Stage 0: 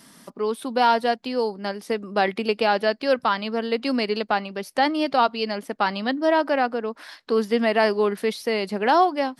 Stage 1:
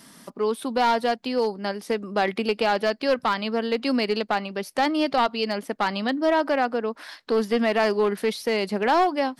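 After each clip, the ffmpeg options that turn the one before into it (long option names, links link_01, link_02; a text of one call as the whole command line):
ffmpeg -i in.wav -filter_complex "[0:a]asplit=2[link_01][link_02];[link_02]alimiter=limit=-15.5dB:level=0:latency=1:release=76,volume=-1dB[link_03];[link_01][link_03]amix=inputs=2:normalize=0,aeval=exprs='clip(val(0),-1,0.224)':channel_layout=same,volume=-4.5dB" out.wav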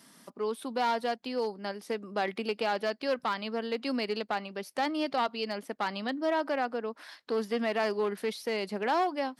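ffmpeg -i in.wav -af "highpass=frequency=140:poles=1,volume=-7.5dB" out.wav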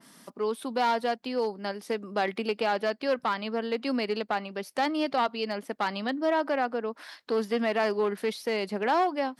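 ffmpeg -i in.wav -af "adynamicequalizer=threshold=0.00562:dfrequency=2900:dqfactor=0.7:tfrequency=2900:tqfactor=0.7:attack=5:release=100:ratio=0.375:range=2:mode=cutabove:tftype=highshelf,volume=3dB" out.wav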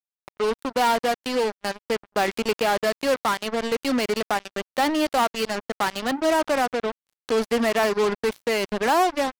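ffmpeg -i in.wav -af "acrusher=bits=4:mix=0:aa=0.5,volume=5dB" out.wav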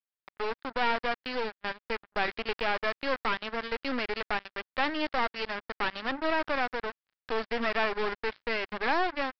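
ffmpeg -i in.wav -af "equalizer=frequency=1700:width=1.2:gain=8,aresample=11025,aeval=exprs='clip(val(0),-1,0.0251)':channel_layout=same,aresample=44100,volume=-7dB" out.wav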